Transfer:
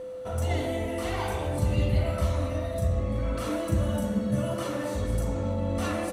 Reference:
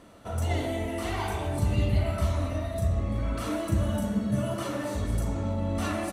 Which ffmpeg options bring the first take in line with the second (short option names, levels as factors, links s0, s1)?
-af "bandreject=f=510:w=30"